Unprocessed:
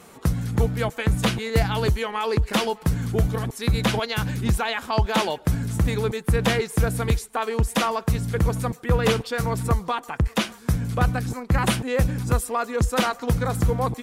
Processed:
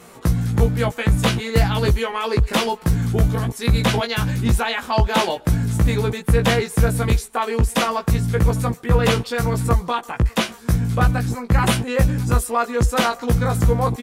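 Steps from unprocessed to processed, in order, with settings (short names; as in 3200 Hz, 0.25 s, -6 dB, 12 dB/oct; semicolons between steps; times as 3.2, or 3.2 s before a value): doubler 17 ms -4 dB; gain +2 dB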